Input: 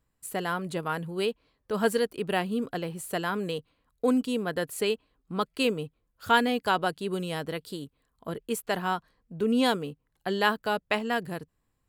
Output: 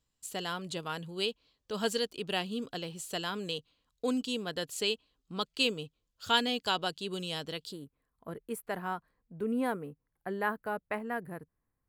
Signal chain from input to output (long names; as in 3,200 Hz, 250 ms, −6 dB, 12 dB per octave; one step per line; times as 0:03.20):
flat-topped bell 4,600 Hz +11 dB, from 0:07.71 −8 dB, from 0:09.52 −16 dB
level −7 dB